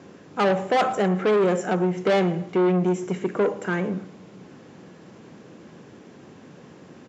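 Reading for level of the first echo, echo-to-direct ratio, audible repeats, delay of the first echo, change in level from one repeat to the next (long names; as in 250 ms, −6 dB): −21.0 dB, −20.5 dB, 2, 113 ms, −9.5 dB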